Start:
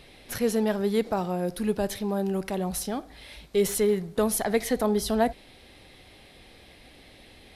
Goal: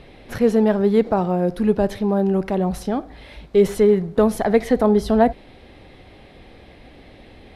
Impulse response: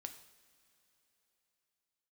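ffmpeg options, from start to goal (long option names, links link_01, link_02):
-af "lowpass=frequency=1200:poles=1,volume=9dB"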